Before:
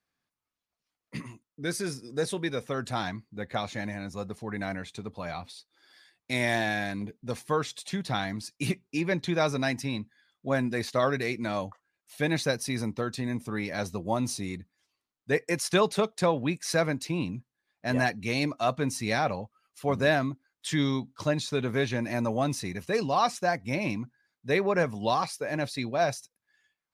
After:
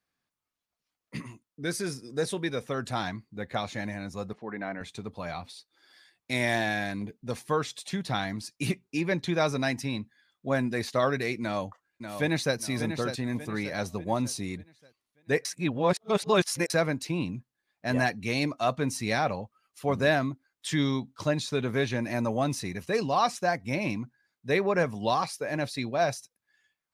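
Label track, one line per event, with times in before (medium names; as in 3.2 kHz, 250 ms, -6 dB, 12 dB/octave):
4.330000	4.810000	band-pass 220–2200 Hz
11.410000	12.560000	echo throw 590 ms, feedback 40%, level -8 dB
15.450000	16.700000	reverse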